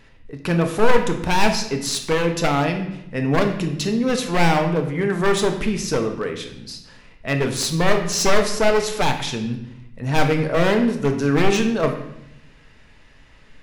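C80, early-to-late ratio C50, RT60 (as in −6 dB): 10.5 dB, 8.0 dB, 0.80 s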